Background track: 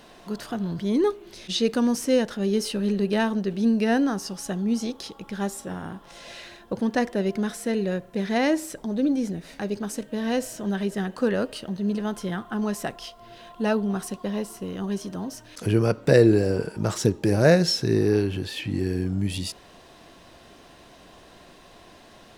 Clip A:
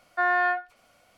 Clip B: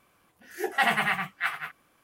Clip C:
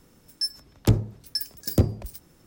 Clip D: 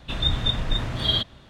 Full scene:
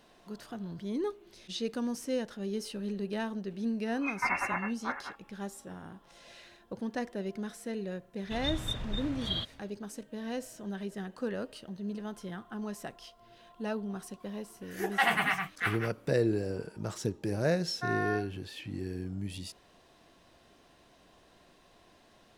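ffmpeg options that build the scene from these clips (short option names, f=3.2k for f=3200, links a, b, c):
-filter_complex "[2:a]asplit=2[a][b];[0:a]volume=-11.5dB[c];[a]lowpass=f=2.5k:t=q:w=0.5098,lowpass=f=2.5k:t=q:w=0.6013,lowpass=f=2.5k:t=q:w=0.9,lowpass=f=2.5k:t=q:w=2.563,afreqshift=-2900,atrim=end=2.03,asetpts=PTS-STARTPTS,volume=-6.5dB,afade=t=in:d=0.004:c=hsin,afade=t=out:st=2.026:d=0.004:c=hsin,adelay=3440[d];[4:a]atrim=end=1.49,asetpts=PTS-STARTPTS,volume=-11.5dB,afade=t=in:d=0.004:c=hsin,afade=t=out:st=1.486:d=0.004:c=hsin,adelay=8220[e];[b]atrim=end=2.03,asetpts=PTS-STARTPTS,volume=-3dB,afade=t=in:d=0.004:c=hsin,afade=t=out:st=2.026:d=0.004:c=hsin,adelay=14200[f];[1:a]atrim=end=1.17,asetpts=PTS-STARTPTS,volume=-11dB,afade=t=in:d=0.004:c=hsin,afade=t=out:st=1.166:d=0.004:c=hsin,adelay=777924S[g];[c][d][e][f][g]amix=inputs=5:normalize=0"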